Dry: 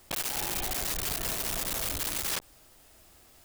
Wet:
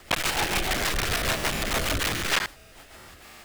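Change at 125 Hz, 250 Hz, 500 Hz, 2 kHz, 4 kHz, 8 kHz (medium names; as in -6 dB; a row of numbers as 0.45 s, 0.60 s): +9.5 dB, +9.5 dB, +9.5 dB, +12.5 dB, +8.0 dB, +1.5 dB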